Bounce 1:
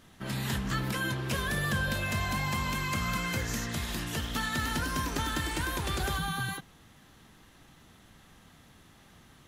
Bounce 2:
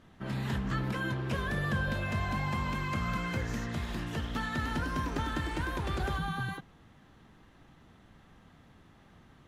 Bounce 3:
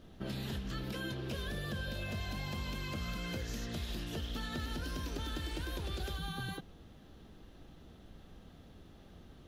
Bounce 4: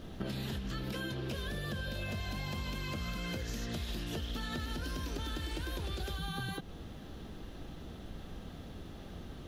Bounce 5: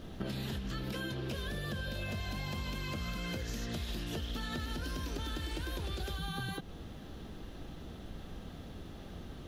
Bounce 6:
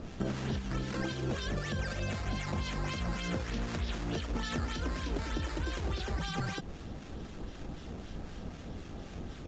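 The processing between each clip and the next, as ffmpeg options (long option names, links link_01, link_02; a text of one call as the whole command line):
ffmpeg -i in.wav -af "lowpass=frequency=1600:poles=1" out.wav
ffmpeg -i in.wav -filter_complex "[0:a]equalizer=frequency=125:width_type=o:width=1:gain=-8,equalizer=frequency=250:width_type=o:width=1:gain=-4,equalizer=frequency=1000:width_type=o:width=1:gain=-11,equalizer=frequency=2000:width_type=o:width=1:gain=-11,equalizer=frequency=8000:width_type=o:width=1:gain=-8,acrossover=split=1800[link_01][link_02];[link_01]acompressor=threshold=-45dB:ratio=6[link_03];[link_02]alimiter=level_in=21dB:limit=-24dB:level=0:latency=1:release=103,volume=-21dB[link_04];[link_03][link_04]amix=inputs=2:normalize=0,volume=8dB" out.wav
ffmpeg -i in.wav -af "acompressor=threshold=-44dB:ratio=6,volume=9dB" out.wav
ffmpeg -i in.wav -af anull out.wav
ffmpeg -i in.wav -filter_complex "[0:a]acrusher=samples=10:mix=1:aa=0.000001:lfo=1:lforange=10:lforate=3.3,aresample=16000,aresample=44100,acrossover=split=1200[link_01][link_02];[link_01]aeval=exprs='val(0)*(1-0.5/2+0.5/2*cos(2*PI*3.9*n/s))':channel_layout=same[link_03];[link_02]aeval=exprs='val(0)*(1-0.5/2-0.5/2*cos(2*PI*3.9*n/s))':channel_layout=same[link_04];[link_03][link_04]amix=inputs=2:normalize=0,volume=5.5dB" out.wav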